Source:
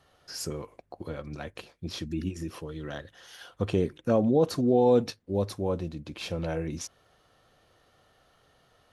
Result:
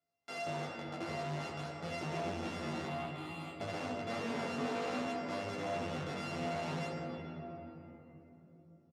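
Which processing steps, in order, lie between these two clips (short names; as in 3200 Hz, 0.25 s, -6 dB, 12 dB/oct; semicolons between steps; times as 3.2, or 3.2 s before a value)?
sample sorter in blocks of 64 samples; gate -56 dBFS, range -11 dB; sample leveller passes 5; limiter -28 dBFS, peak gain reduction 16.5 dB; 2.85–3.61 fixed phaser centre 1600 Hz, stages 6; shoebox room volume 210 m³, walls hard, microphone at 0.43 m; chorus 0.57 Hz, delay 19 ms, depth 2.2 ms; soft clip -32.5 dBFS, distortion -10 dB; BPF 170–5600 Hz; doubler 12 ms -4.5 dB; gain -1 dB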